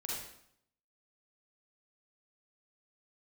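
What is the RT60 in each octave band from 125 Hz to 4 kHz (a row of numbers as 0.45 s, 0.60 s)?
0.80 s, 0.80 s, 0.70 s, 0.70 s, 0.65 s, 0.60 s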